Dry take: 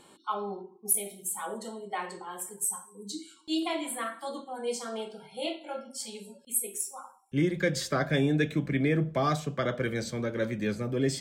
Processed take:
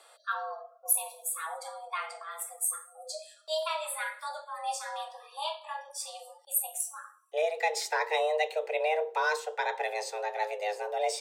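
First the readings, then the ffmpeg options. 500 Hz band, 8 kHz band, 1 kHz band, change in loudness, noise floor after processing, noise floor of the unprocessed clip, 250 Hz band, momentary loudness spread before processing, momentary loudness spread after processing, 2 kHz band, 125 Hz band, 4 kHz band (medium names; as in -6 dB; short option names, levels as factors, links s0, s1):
0.0 dB, -0.5 dB, +4.0 dB, -1.0 dB, -59 dBFS, -57 dBFS, under -35 dB, 12 LU, 12 LU, +2.0 dB, under -40 dB, 0.0 dB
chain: -af "afreqshift=310,lowshelf=f=380:g=-9.5"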